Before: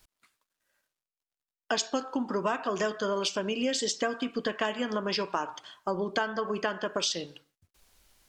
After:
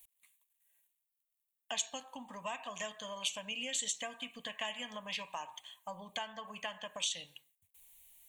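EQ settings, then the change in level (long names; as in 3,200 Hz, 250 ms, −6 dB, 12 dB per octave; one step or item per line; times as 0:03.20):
first-order pre-emphasis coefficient 0.9
phaser with its sweep stopped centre 1,400 Hz, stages 6
+7.0 dB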